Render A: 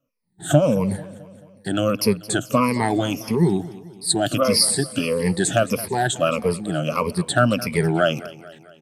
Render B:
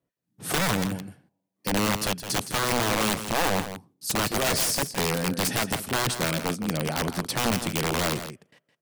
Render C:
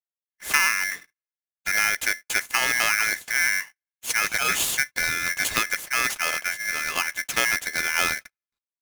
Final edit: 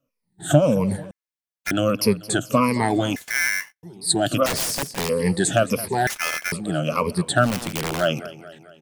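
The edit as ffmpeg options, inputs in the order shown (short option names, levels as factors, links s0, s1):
-filter_complex "[2:a]asplit=3[s0][s1][s2];[1:a]asplit=2[s3][s4];[0:a]asplit=6[s5][s6][s7][s8][s9][s10];[s5]atrim=end=1.112[s11];[s0]atrim=start=1.108:end=1.712[s12];[s6]atrim=start=1.708:end=3.162[s13];[s1]atrim=start=3.158:end=3.832[s14];[s7]atrim=start=3.828:end=4.462[s15];[s3]atrim=start=4.458:end=5.092[s16];[s8]atrim=start=5.088:end=6.072[s17];[s2]atrim=start=6.068:end=6.522[s18];[s9]atrim=start=6.518:end=7.56[s19];[s4]atrim=start=7.4:end=8.09[s20];[s10]atrim=start=7.93[s21];[s11][s12]acrossfade=d=0.004:c1=hsin:c2=hsin[s22];[s22][s13]acrossfade=d=0.004:c1=hsin:c2=hsin[s23];[s23][s14]acrossfade=d=0.004:c1=hsin:c2=hsin[s24];[s24][s15]acrossfade=d=0.004:c1=hsin:c2=hsin[s25];[s25][s16]acrossfade=d=0.004:c1=hsin:c2=hsin[s26];[s26][s17]acrossfade=d=0.004:c1=hsin:c2=hsin[s27];[s27][s18]acrossfade=d=0.004:c1=hsin:c2=hsin[s28];[s28][s19]acrossfade=d=0.004:c1=hsin:c2=hsin[s29];[s29][s20]acrossfade=d=0.16:c1=tri:c2=tri[s30];[s30][s21]acrossfade=d=0.16:c1=tri:c2=tri"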